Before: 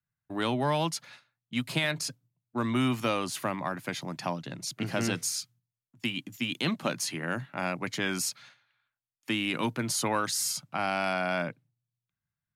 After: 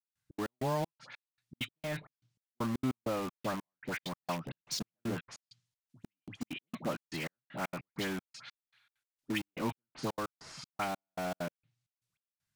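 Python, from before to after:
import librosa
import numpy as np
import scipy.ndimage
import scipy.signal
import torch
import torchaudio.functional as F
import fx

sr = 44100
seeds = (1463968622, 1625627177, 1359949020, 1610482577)

p1 = scipy.signal.medfilt(x, 3)
p2 = fx.env_lowpass_down(p1, sr, base_hz=830.0, full_db=-26.5)
p3 = fx.high_shelf(p2, sr, hz=2100.0, db=10.5)
p4 = fx.dispersion(p3, sr, late='highs', ms=89.0, hz=1400.0)
p5 = (np.mod(10.0 ** (31.0 / 20.0) * p4 + 1.0, 2.0) - 1.0) / 10.0 ** (31.0 / 20.0)
p6 = p4 + (p5 * librosa.db_to_amplitude(-7.5))
p7 = fx.step_gate(p6, sr, bpm=196, pattern='..xx.x..xxx..xx.', floor_db=-60.0, edge_ms=4.5)
y = p7 * librosa.db_to_amplitude(-4.0)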